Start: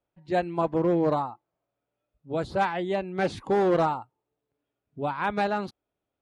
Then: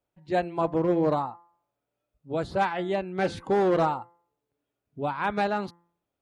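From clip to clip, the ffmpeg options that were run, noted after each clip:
-af "bandreject=f=171.5:t=h:w=4,bandreject=f=343:t=h:w=4,bandreject=f=514.5:t=h:w=4,bandreject=f=686:t=h:w=4,bandreject=f=857.5:t=h:w=4,bandreject=f=1.029k:t=h:w=4,bandreject=f=1.2005k:t=h:w=4,bandreject=f=1.372k:t=h:w=4,bandreject=f=1.5435k:t=h:w=4,bandreject=f=1.715k:t=h:w=4,bandreject=f=1.8865k:t=h:w=4,bandreject=f=2.058k:t=h:w=4"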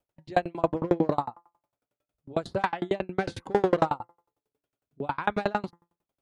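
-af "aeval=exprs='val(0)*pow(10,-32*if(lt(mod(11*n/s,1),2*abs(11)/1000),1-mod(11*n/s,1)/(2*abs(11)/1000),(mod(11*n/s,1)-2*abs(11)/1000)/(1-2*abs(11)/1000))/20)':c=same,volume=7dB"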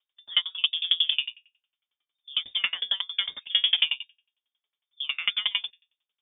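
-af "lowpass=f=3.1k:t=q:w=0.5098,lowpass=f=3.1k:t=q:w=0.6013,lowpass=f=3.1k:t=q:w=0.9,lowpass=f=3.1k:t=q:w=2.563,afreqshift=-3700"

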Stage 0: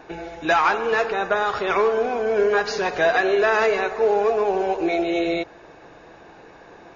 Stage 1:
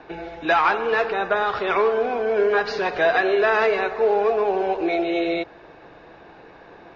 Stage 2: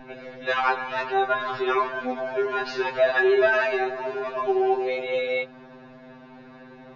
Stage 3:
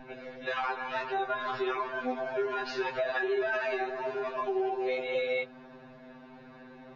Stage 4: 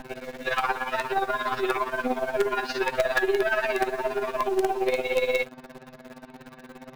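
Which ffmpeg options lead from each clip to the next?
-filter_complex "[0:a]lowpass=f=4.7k:w=0.5412,lowpass=f=4.7k:w=1.3066,acrossover=split=220|3100[a][b][c];[a]alimiter=level_in=14.5dB:limit=-24dB:level=0:latency=1,volume=-14.5dB[d];[d][b][c]amix=inputs=3:normalize=0"
-af "aeval=exprs='val(0)+0.0158*(sin(2*PI*50*n/s)+sin(2*PI*2*50*n/s)/2+sin(2*PI*3*50*n/s)/3+sin(2*PI*4*50*n/s)/4+sin(2*PI*5*50*n/s)/5)':c=same,afftfilt=real='re*2.45*eq(mod(b,6),0)':imag='im*2.45*eq(mod(b,6),0)':win_size=2048:overlap=0.75"
-af "alimiter=limit=-18.5dB:level=0:latency=1:release=144,flanger=delay=1.2:depth=3.1:regen=-69:speed=1.7:shape=triangular"
-filter_complex "[0:a]tremolo=f=17:d=0.67,asplit=2[a][b];[b]acrusher=bits=5:dc=4:mix=0:aa=0.000001,volume=-5dB[c];[a][c]amix=inputs=2:normalize=0,volume=6.5dB"

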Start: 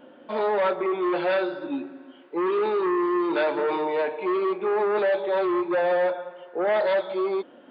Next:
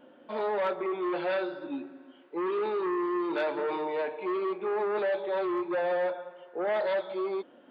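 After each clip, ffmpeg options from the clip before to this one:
-af "asoftclip=type=hard:threshold=-16.5dB,volume=-6dB"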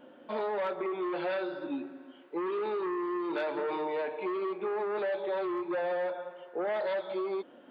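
-af "acompressor=threshold=-31dB:ratio=6,volume=1.5dB"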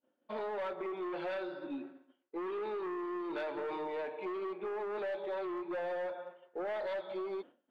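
-filter_complex "[0:a]agate=range=-33dB:threshold=-40dB:ratio=3:detection=peak,asplit=2[a][b];[b]aeval=exprs='clip(val(0),-1,0.0211)':c=same,volume=-6dB[c];[a][c]amix=inputs=2:normalize=0,volume=-8.5dB"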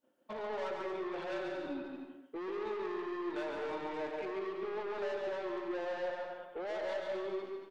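-filter_complex "[0:a]alimiter=level_in=10dB:limit=-24dB:level=0:latency=1:release=246,volume=-10dB,aeval=exprs='0.0211*(cos(1*acos(clip(val(0)/0.0211,-1,1)))-cos(1*PI/2))+0.000299*(cos(4*acos(clip(val(0)/0.0211,-1,1)))-cos(4*PI/2))+0.00211*(cos(5*acos(clip(val(0)/0.0211,-1,1)))-cos(5*PI/2))':c=same,asplit=2[a][b];[b]aecho=0:1:140|231|290.2|328.6|353.6:0.631|0.398|0.251|0.158|0.1[c];[a][c]amix=inputs=2:normalize=0"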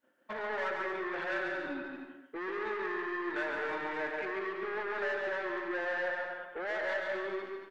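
-af "equalizer=f=1.7k:w=1.6:g=13.5"

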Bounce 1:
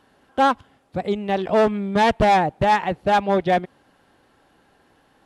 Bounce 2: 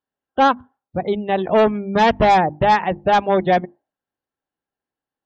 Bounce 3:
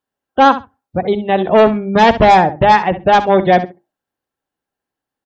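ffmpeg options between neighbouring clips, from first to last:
-af "bandreject=f=50:t=h:w=6,bandreject=f=100:t=h:w=6,bandreject=f=150:t=h:w=6,bandreject=f=200:t=h:w=6,bandreject=f=250:t=h:w=6,bandreject=f=300:t=h:w=6,bandreject=f=350:t=h:w=6,aeval=exprs='0.282*(abs(mod(val(0)/0.282+3,4)-2)-1)':c=same,afftdn=nr=34:nf=-37,volume=3dB"
-af "aecho=1:1:66|132:0.211|0.0317,volume=5dB"

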